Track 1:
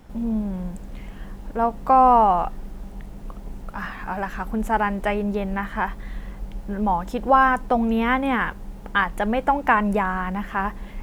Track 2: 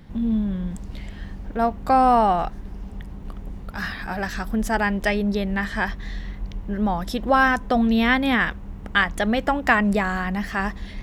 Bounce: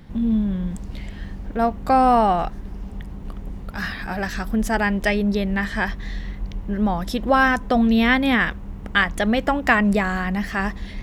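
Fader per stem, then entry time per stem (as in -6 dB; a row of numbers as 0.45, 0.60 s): -16.0, +1.5 dB; 0.00, 0.00 s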